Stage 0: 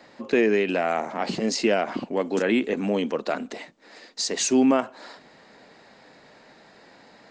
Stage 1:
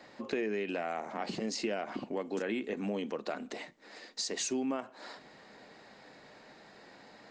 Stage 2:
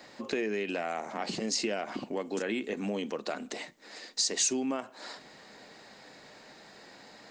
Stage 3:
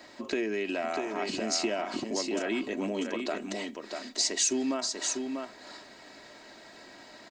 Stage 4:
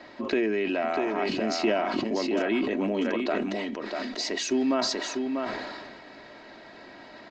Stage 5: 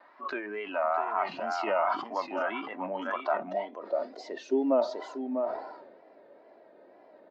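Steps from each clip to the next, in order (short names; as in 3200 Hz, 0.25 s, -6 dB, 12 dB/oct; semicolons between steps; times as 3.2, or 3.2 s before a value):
compressor 2.5:1, threshold -32 dBFS, peak gain reduction 11.5 dB; on a send at -15 dB: reverb RT60 0.30 s, pre-delay 3 ms; on the sum: gain -3.5 dB
high shelf 4800 Hz +11 dB; gain +1.5 dB
comb 3.1 ms, depth 49%; on a send: echo 0.644 s -5 dB
air absorption 210 m; sustainer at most 30 dB/s; gain +5 dB
spectral noise reduction 10 dB; band-pass sweep 1100 Hz -> 520 Hz, 3.19–3.93; wow and flutter 96 cents; gain +8 dB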